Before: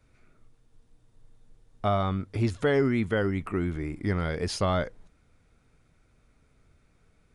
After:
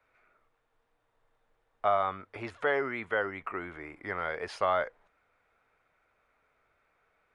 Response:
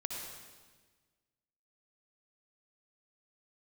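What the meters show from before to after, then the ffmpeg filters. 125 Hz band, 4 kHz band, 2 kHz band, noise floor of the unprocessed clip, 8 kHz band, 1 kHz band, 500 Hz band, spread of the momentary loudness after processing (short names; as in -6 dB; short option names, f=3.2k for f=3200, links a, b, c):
-20.5 dB, -8.0 dB, +1.5 dB, -65 dBFS, under -10 dB, +2.0 dB, -3.5 dB, 12 LU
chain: -filter_complex "[0:a]acrossover=split=530 2600:gain=0.0631 1 0.112[a][b][c];[a][b][c]amix=inputs=3:normalize=0,volume=3dB"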